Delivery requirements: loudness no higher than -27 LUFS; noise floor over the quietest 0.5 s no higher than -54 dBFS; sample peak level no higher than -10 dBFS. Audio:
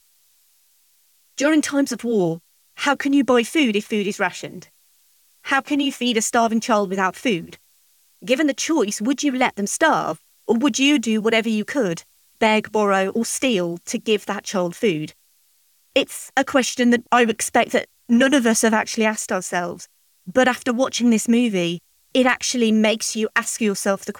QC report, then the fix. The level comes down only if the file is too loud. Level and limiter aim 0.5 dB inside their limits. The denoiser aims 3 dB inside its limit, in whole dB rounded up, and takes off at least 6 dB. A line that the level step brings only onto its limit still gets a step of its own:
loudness -20.0 LUFS: fail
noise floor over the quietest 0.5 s -60 dBFS: OK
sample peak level -5.0 dBFS: fail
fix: gain -7.5 dB

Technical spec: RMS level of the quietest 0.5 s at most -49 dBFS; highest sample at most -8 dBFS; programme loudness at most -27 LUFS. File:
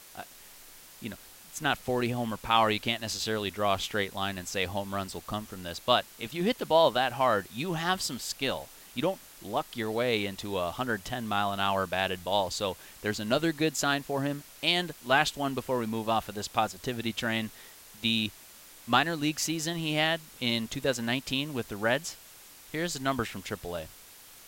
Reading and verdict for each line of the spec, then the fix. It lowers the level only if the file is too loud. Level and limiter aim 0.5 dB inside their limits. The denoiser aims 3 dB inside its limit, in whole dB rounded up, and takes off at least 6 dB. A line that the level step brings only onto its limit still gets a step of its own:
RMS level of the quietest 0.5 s -52 dBFS: OK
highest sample -7.5 dBFS: fail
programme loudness -29.5 LUFS: OK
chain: limiter -8.5 dBFS

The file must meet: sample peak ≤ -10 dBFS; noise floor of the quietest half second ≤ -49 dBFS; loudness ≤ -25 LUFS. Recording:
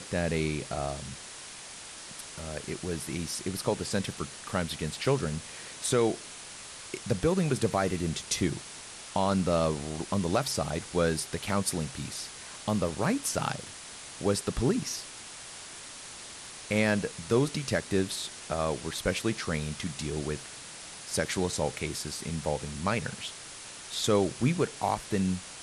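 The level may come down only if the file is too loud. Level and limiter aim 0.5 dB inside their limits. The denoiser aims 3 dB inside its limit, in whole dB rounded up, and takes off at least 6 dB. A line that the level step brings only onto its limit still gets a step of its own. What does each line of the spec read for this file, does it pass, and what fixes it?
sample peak -14.5 dBFS: OK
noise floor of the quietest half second -45 dBFS: fail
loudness -31.0 LUFS: OK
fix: denoiser 7 dB, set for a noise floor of -45 dBFS

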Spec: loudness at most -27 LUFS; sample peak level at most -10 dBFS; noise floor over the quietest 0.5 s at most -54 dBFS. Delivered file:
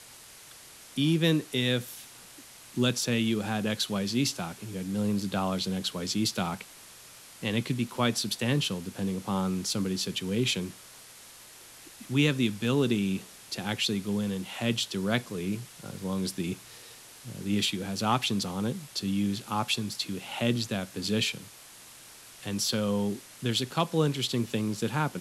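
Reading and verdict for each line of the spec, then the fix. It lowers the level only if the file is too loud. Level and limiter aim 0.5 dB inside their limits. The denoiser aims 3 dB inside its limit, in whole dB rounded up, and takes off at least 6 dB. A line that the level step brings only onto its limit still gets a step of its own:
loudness -29.5 LUFS: OK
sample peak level -12.0 dBFS: OK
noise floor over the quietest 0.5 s -50 dBFS: fail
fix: denoiser 7 dB, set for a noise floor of -50 dBFS

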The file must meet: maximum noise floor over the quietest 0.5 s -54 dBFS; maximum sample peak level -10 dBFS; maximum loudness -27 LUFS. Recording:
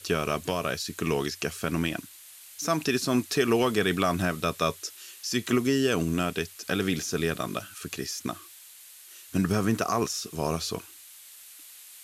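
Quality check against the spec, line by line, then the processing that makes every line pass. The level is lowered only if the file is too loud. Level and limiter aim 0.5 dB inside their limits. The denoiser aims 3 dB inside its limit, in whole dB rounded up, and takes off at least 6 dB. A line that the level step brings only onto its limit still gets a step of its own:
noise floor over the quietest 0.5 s -49 dBFS: fail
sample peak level -12.0 dBFS: OK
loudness -28.0 LUFS: OK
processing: denoiser 8 dB, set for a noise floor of -49 dBFS

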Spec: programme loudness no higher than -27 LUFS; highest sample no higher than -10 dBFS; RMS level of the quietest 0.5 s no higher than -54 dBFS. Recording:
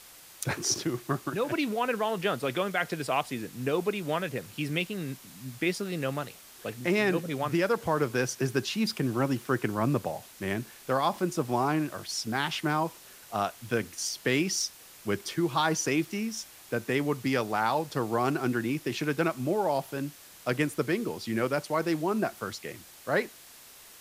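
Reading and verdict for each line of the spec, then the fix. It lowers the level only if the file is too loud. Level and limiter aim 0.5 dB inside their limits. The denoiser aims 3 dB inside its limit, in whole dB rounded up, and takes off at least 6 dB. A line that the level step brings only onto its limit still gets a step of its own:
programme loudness -30.0 LUFS: OK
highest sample -13.0 dBFS: OK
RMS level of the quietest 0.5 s -51 dBFS: fail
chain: denoiser 6 dB, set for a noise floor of -51 dBFS

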